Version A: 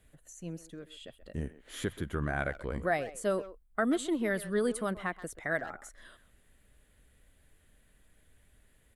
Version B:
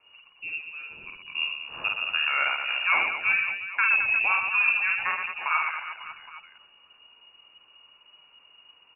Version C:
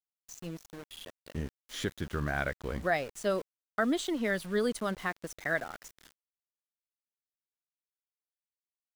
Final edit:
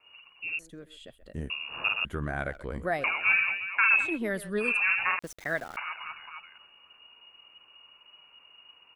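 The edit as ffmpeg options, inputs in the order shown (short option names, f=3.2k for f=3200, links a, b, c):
-filter_complex "[0:a]asplit=3[a][b][c];[1:a]asplit=5[d][e][f][g][h];[d]atrim=end=0.592[i];[a]atrim=start=0.588:end=1.502[j];[e]atrim=start=1.498:end=2.052[k];[b]atrim=start=2.048:end=3.042[l];[f]atrim=start=3.038:end=4.19[m];[c]atrim=start=3.95:end=4.81[n];[g]atrim=start=4.57:end=5.192[o];[2:a]atrim=start=5.188:end=5.772[p];[h]atrim=start=5.768[q];[i][j]acrossfade=d=0.004:c1=hsin:c2=hsin[r];[r][k]acrossfade=d=0.004:c1=hsin:c2=hsin[s];[s][l]acrossfade=d=0.004:c1=hsin:c2=hsin[t];[t][m]acrossfade=d=0.004:c1=hsin:c2=hsin[u];[u][n]acrossfade=d=0.24:c1=tri:c2=tri[v];[v][o]acrossfade=d=0.24:c1=tri:c2=tri[w];[w][p]acrossfade=d=0.004:c1=hsin:c2=hsin[x];[x][q]acrossfade=d=0.004:c1=hsin:c2=hsin"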